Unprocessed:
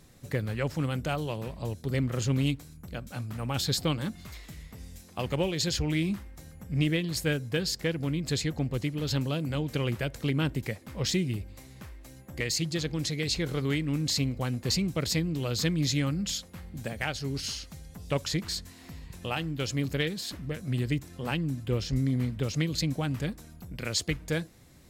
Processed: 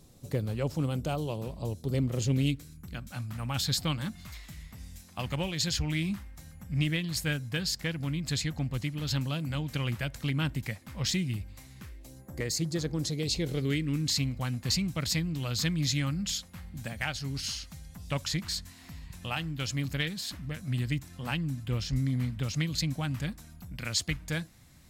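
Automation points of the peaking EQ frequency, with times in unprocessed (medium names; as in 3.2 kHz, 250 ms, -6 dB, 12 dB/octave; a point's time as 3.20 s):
peaking EQ -11 dB 1 oct
2.01 s 1.8 kHz
3.12 s 420 Hz
11.72 s 420 Hz
12.22 s 2.8 kHz
12.93 s 2.8 kHz
14.26 s 420 Hz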